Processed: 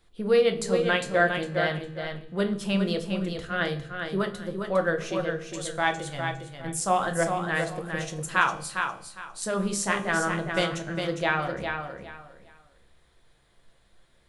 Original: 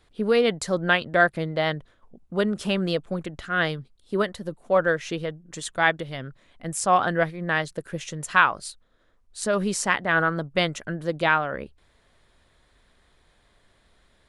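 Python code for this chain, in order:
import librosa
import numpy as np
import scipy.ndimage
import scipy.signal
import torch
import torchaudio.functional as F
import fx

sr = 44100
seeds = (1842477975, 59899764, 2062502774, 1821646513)

y = fx.high_shelf(x, sr, hz=7500.0, db=5.5)
y = fx.comb_fb(y, sr, f0_hz=67.0, decay_s=1.0, harmonics='all', damping=0.0, mix_pct=50)
y = fx.echo_feedback(y, sr, ms=406, feedback_pct=24, wet_db=-6.0)
y = fx.room_shoebox(y, sr, seeds[0], volume_m3=150.0, walls='furnished', distance_m=0.78)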